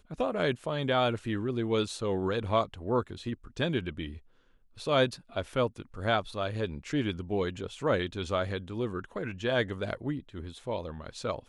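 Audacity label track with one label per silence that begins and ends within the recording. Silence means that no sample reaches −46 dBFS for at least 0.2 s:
4.180000	4.770000	silence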